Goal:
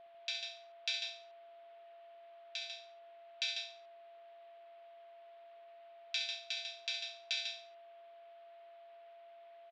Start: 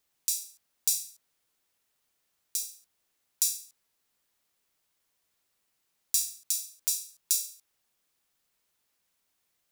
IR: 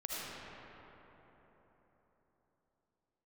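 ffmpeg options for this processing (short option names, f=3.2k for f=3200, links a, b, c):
-af "highpass=f=470:t=q:w=0.5412,highpass=f=470:t=q:w=1.307,lowpass=f=3.4k:t=q:w=0.5176,lowpass=f=3.4k:t=q:w=0.7071,lowpass=f=3.4k:t=q:w=1.932,afreqshift=-57,aeval=exprs='val(0)+0.000447*sin(2*PI*680*n/s)':c=same,aecho=1:1:64.14|145.8:0.355|0.501,volume=12.5dB"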